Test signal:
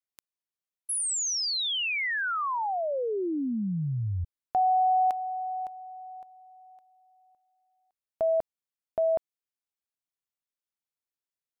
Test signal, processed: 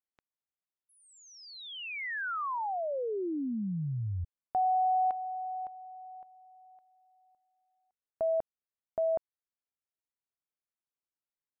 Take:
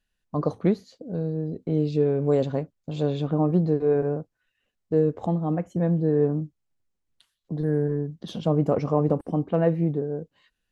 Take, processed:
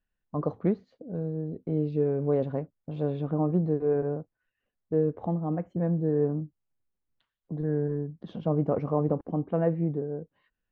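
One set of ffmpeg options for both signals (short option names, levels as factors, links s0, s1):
-af "lowpass=1900,volume=0.631"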